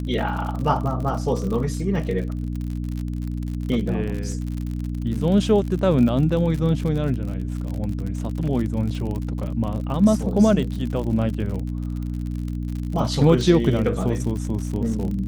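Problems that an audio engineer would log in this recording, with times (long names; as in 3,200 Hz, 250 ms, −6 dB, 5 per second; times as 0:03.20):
surface crackle 55 per second −28 dBFS
mains hum 60 Hz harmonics 5 −27 dBFS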